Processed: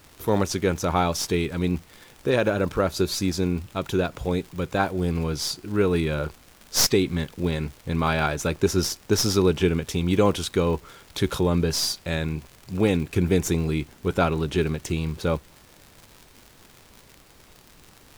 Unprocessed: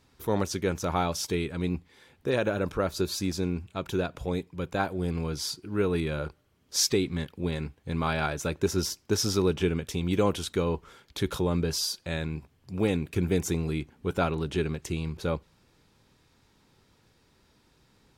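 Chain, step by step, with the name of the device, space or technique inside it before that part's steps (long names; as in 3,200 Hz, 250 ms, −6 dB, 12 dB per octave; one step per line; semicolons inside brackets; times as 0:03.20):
record under a worn stylus (stylus tracing distortion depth 0.037 ms; surface crackle 110 per second −39 dBFS; pink noise bed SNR 29 dB)
level +5 dB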